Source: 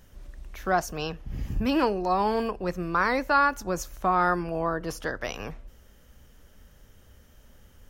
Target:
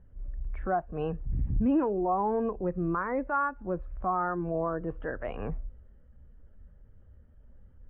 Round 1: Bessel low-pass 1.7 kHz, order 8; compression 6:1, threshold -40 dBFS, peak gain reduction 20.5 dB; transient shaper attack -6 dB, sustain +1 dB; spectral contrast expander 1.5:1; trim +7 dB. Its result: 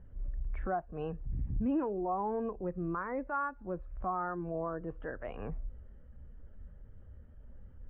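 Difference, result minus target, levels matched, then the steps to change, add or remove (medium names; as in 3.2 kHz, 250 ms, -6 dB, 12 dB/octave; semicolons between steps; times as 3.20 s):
compression: peak gain reduction +6 dB
change: compression 6:1, threshold -33 dBFS, peak gain reduction 14.5 dB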